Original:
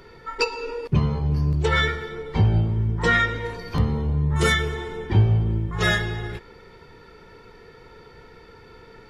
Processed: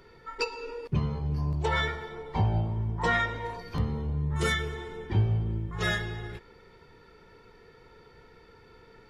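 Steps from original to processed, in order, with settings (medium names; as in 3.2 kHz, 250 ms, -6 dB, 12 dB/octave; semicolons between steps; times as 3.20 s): 1.38–3.62 s: high-order bell 800 Hz +8.5 dB 1 oct; trim -7.5 dB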